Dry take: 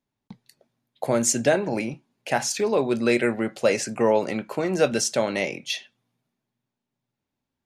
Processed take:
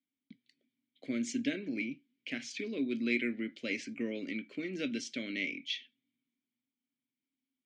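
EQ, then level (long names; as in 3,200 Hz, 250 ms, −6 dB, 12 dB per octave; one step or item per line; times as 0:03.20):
formant filter i
low-pass filter 7,500 Hz 12 dB per octave
parametric band 5,300 Hz +7 dB 2.8 octaves
0.0 dB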